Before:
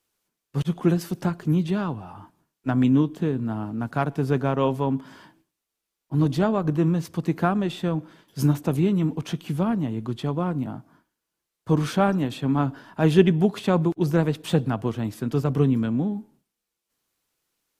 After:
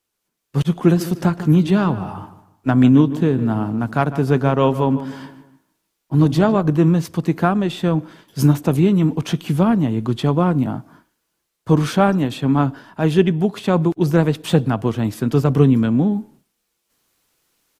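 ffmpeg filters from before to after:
ffmpeg -i in.wav -filter_complex "[0:a]asplit=3[link_01][link_02][link_03];[link_01]afade=type=out:start_time=0.95:duration=0.02[link_04];[link_02]asplit=2[link_05][link_06];[link_06]adelay=151,lowpass=frequency=2500:poles=1,volume=-13.5dB,asplit=2[link_07][link_08];[link_08]adelay=151,lowpass=frequency=2500:poles=1,volume=0.37,asplit=2[link_09][link_10];[link_10]adelay=151,lowpass=frequency=2500:poles=1,volume=0.37,asplit=2[link_11][link_12];[link_12]adelay=151,lowpass=frequency=2500:poles=1,volume=0.37[link_13];[link_05][link_07][link_09][link_11][link_13]amix=inputs=5:normalize=0,afade=type=in:start_time=0.95:duration=0.02,afade=type=out:start_time=6.61:duration=0.02[link_14];[link_03]afade=type=in:start_time=6.61:duration=0.02[link_15];[link_04][link_14][link_15]amix=inputs=3:normalize=0,dynaudnorm=framelen=110:gausssize=7:maxgain=11.5dB,volume=-1dB" out.wav

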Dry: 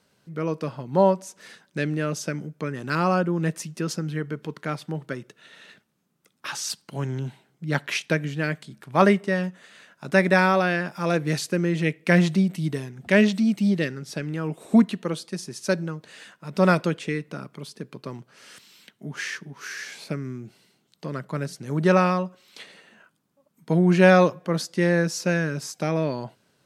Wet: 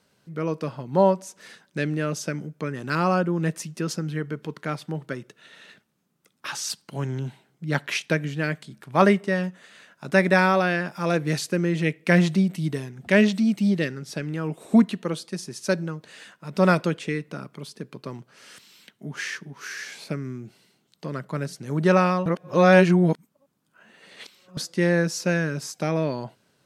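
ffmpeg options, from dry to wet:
ffmpeg -i in.wav -filter_complex "[0:a]asplit=3[link_01][link_02][link_03];[link_01]atrim=end=22.262[link_04];[link_02]atrim=start=22.258:end=24.572,asetpts=PTS-STARTPTS,areverse[link_05];[link_03]atrim=start=24.568[link_06];[link_04][link_05]acrossfade=duration=0.004:curve1=hsin:curve2=hsin[link_07];[link_07][link_06]acrossfade=duration=0.004:curve1=hsin:curve2=hsin" out.wav

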